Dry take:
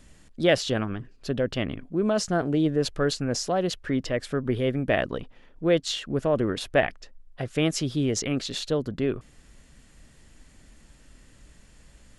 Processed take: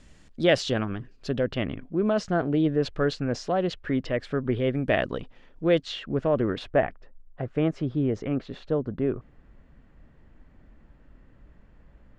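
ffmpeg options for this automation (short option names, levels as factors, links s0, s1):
-af "asetnsamples=n=441:p=0,asendcmd='1.43 lowpass f 3400;4.75 lowpass f 7200;5.83 lowpass f 3000;6.71 lowpass f 1400',lowpass=6600"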